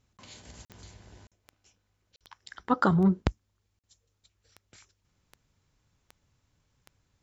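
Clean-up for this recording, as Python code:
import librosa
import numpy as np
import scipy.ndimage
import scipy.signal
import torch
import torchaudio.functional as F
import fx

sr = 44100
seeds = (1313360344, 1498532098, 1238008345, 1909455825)

y = fx.fix_declick_ar(x, sr, threshold=10.0)
y = fx.fix_interpolate(y, sr, at_s=(0.65, 1.27, 2.16, 3.79), length_ms=47.0)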